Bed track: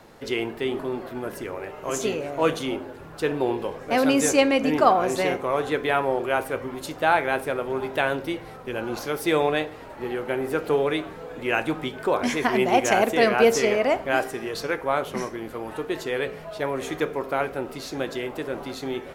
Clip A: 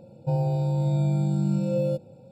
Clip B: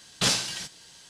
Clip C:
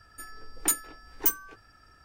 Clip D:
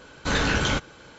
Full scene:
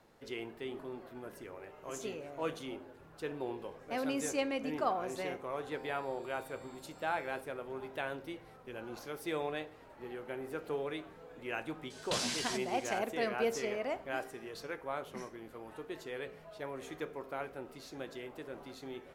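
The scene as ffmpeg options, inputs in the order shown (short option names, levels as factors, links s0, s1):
-filter_complex "[0:a]volume=0.178[s0];[1:a]highpass=1000[s1];[2:a]acompressor=threshold=0.0398:ratio=6:attack=3.2:release=140:knee=1:detection=peak[s2];[s1]atrim=end=2.31,asetpts=PTS-STARTPTS,volume=0.266,afade=t=in:d=0.004:c=hsin,afade=t=out:st=2.306:d=0.004:c=hsin,adelay=5440[s3];[s2]atrim=end=1.09,asetpts=PTS-STARTPTS,volume=0.631,afade=t=in:d=0.004:c=hsin,afade=t=out:st=1.086:d=0.004:c=hsin,adelay=11900[s4];[s0][s3][s4]amix=inputs=3:normalize=0"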